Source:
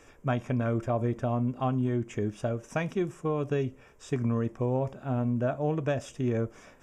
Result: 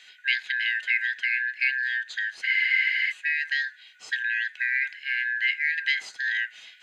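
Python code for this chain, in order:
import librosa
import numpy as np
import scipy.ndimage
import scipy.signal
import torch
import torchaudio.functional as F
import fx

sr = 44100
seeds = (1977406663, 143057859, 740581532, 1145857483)

y = fx.band_shuffle(x, sr, order='4123')
y = fx.band_shelf(y, sr, hz=3600.0, db=9.0, octaves=1.7)
y = fx.spec_freeze(y, sr, seeds[0], at_s=2.45, hold_s=0.65)
y = F.gain(torch.from_numpy(y), -1.5).numpy()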